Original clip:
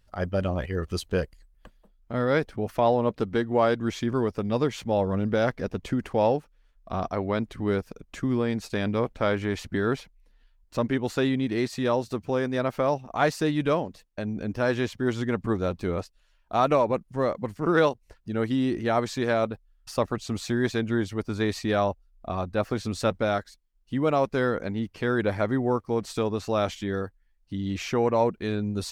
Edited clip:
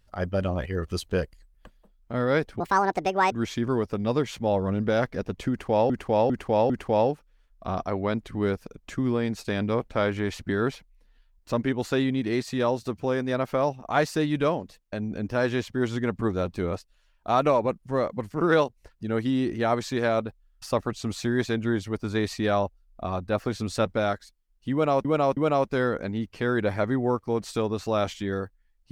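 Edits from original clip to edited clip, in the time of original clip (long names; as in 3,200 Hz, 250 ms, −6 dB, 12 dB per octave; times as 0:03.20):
0:02.60–0:03.77: play speed 163%
0:05.95–0:06.35: repeat, 4 plays
0:23.98–0:24.30: repeat, 3 plays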